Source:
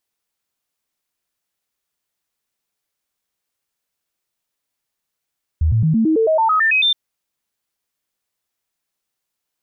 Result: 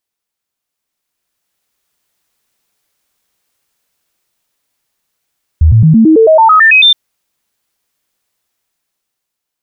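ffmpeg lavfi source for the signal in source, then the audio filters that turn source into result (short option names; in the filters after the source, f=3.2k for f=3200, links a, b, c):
-f lavfi -i "aevalsrc='0.251*clip(min(mod(t,0.11),0.11-mod(t,0.11))/0.005,0,1)*sin(2*PI*79.1*pow(2,floor(t/0.11)/2)*mod(t,0.11))':d=1.32:s=44100"
-af "dynaudnorm=f=320:g=9:m=13dB"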